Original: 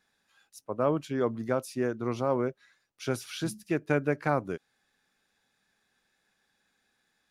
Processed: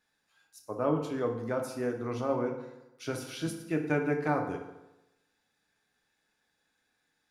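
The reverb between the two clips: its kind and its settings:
feedback delay network reverb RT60 0.96 s, low-frequency decay 0.95×, high-frequency decay 0.7×, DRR 2 dB
level −4.5 dB

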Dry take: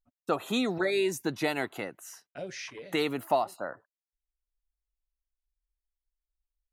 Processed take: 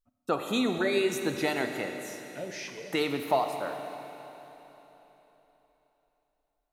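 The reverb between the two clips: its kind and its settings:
four-comb reverb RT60 3.7 s, combs from 28 ms, DRR 5.5 dB

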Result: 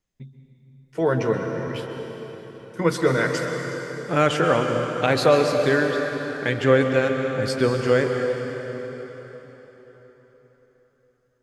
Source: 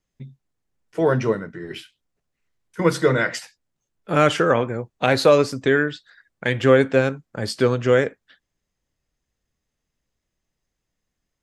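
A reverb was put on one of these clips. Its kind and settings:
dense smooth reverb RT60 4.4 s, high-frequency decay 0.8×, pre-delay 115 ms, DRR 3.5 dB
level −2.5 dB

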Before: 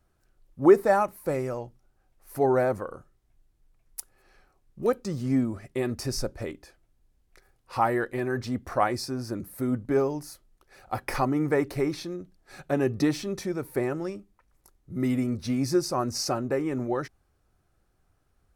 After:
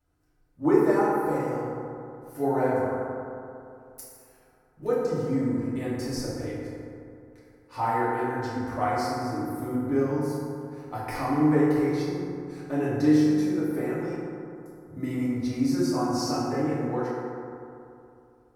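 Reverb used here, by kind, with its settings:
feedback delay network reverb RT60 2.7 s, high-frequency decay 0.35×, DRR −9.5 dB
level −10.5 dB

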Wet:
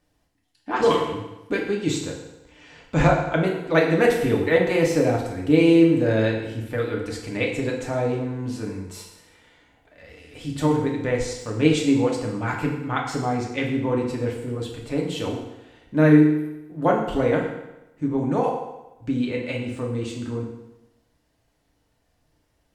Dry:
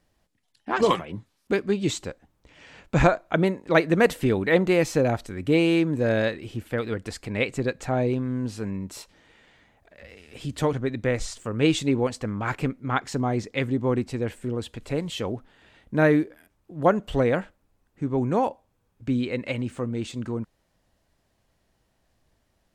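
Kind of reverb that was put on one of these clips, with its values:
feedback delay network reverb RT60 0.97 s, low-frequency decay 0.9×, high-frequency decay 0.9×, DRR −1.5 dB
level −2.5 dB

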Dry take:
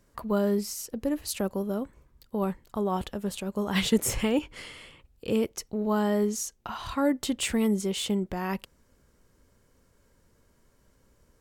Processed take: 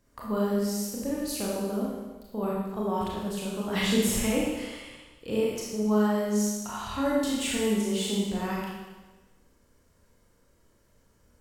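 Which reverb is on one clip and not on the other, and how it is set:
four-comb reverb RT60 1.2 s, combs from 26 ms, DRR −5 dB
level −5.5 dB

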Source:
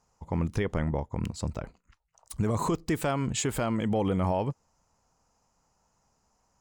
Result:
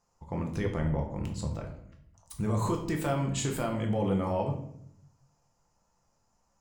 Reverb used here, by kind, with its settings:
rectangular room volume 130 cubic metres, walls mixed, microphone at 0.81 metres
level −5 dB

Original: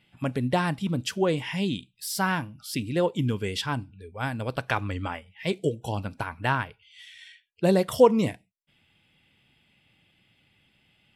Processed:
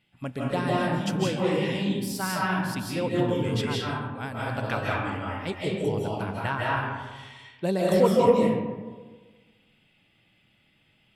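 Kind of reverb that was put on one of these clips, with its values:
comb and all-pass reverb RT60 1.4 s, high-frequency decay 0.45×, pre-delay 120 ms, DRR −5.5 dB
level −5.5 dB

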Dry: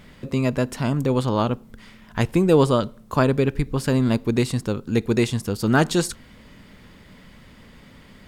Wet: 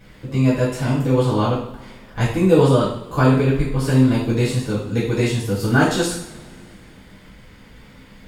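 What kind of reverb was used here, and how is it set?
coupled-rooms reverb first 0.59 s, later 2.6 s, from −22 dB, DRR −9.5 dB
level −7.5 dB

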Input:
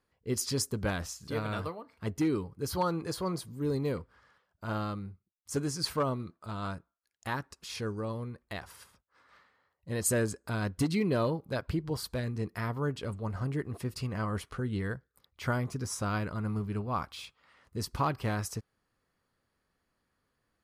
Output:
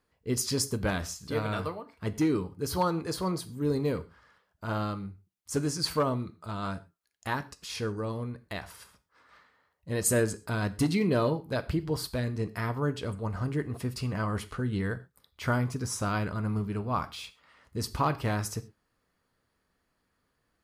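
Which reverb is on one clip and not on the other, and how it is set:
reverb whose tail is shaped and stops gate 150 ms falling, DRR 11 dB
level +2.5 dB

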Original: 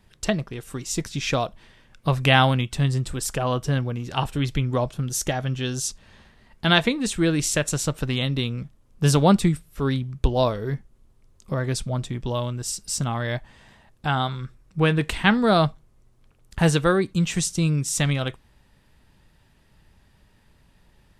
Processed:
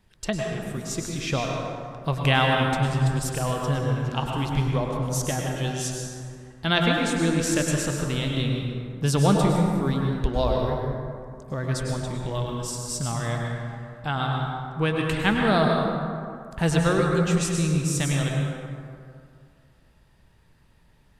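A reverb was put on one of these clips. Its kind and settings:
dense smooth reverb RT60 2.3 s, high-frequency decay 0.45×, pre-delay 90 ms, DRR −0.5 dB
level −4.5 dB

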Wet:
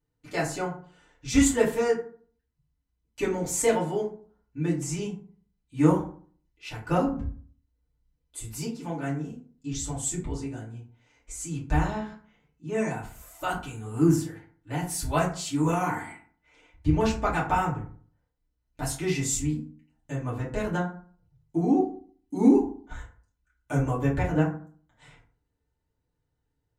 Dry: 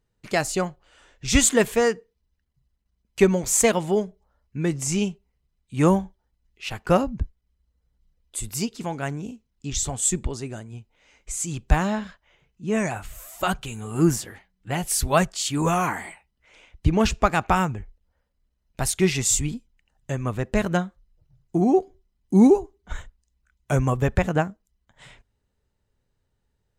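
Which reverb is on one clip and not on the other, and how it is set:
feedback delay network reverb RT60 0.46 s, low-frequency decay 1.2×, high-frequency decay 0.5×, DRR −7.5 dB
level −13.5 dB

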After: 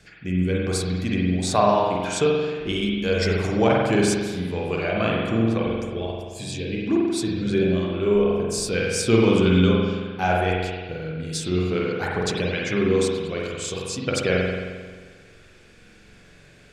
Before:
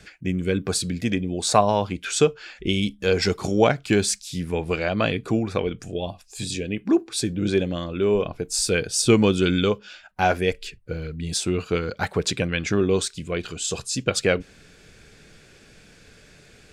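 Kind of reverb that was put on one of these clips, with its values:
spring reverb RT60 1.5 s, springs 44 ms, chirp 65 ms, DRR −3.5 dB
level −4.5 dB

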